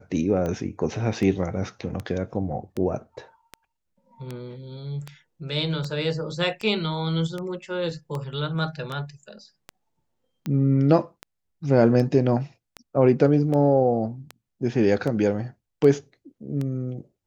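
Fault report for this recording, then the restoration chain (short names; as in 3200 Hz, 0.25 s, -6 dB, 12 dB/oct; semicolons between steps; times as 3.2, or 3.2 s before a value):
tick 78 rpm -18 dBFS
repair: de-click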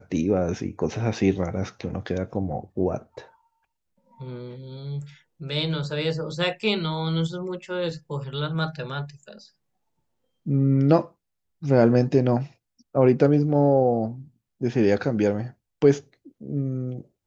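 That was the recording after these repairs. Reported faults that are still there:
none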